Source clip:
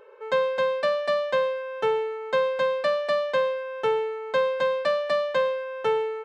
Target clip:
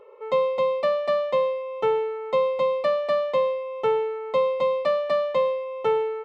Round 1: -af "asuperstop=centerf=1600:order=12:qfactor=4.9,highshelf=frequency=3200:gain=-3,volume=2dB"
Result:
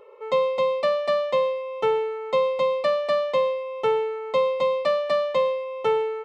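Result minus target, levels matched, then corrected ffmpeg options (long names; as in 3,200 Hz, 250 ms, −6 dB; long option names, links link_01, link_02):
8,000 Hz band +6.0 dB
-af "asuperstop=centerf=1600:order=12:qfactor=4.9,highshelf=frequency=3200:gain=-10.5,volume=2dB"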